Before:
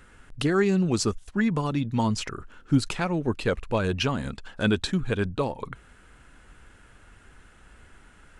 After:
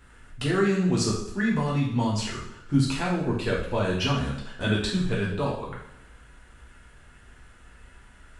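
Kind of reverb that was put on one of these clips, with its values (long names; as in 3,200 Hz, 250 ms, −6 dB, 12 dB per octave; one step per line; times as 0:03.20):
coupled-rooms reverb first 0.67 s, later 1.8 s, from −23 dB, DRR −5.5 dB
level −6 dB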